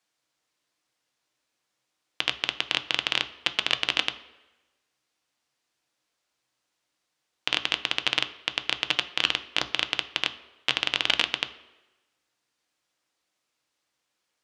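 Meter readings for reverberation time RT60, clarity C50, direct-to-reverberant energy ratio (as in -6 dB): 1.1 s, 15.0 dB, 8.5 dB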